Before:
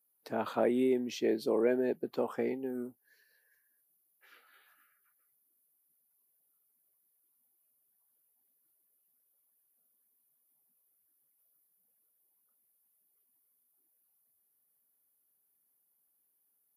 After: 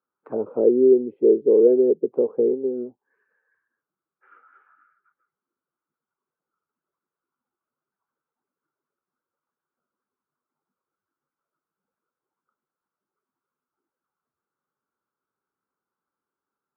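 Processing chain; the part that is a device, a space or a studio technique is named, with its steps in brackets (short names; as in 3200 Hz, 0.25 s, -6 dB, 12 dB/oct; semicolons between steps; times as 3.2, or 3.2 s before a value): envelope filter bass rig (envelope low-pass 460–1400 Hz down, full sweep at -32 dBFS; speaker cabinet 69–2400 Hz, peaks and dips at 390 Hz +4 dB, 680 Hz -7 dB, 1800 Hz -8 dB); gain +3 dB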